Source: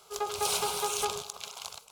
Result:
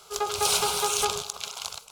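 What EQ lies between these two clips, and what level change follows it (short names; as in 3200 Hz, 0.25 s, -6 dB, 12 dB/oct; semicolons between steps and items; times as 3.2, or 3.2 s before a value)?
low shelf 92 Hz +6.5 dB; bell 1400 Hz +4 dB 0.22 oct; bell 5000 Hz +3.5 dB 2.4 oct; +3.5 dB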